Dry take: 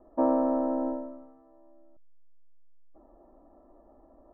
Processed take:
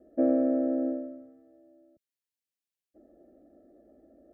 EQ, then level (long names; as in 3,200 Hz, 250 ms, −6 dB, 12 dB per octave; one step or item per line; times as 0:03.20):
high-pass filter 96 Hz 12 dB per octave
Butterworth band-reject 1,000 Hz, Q 0.92
+2.0 dB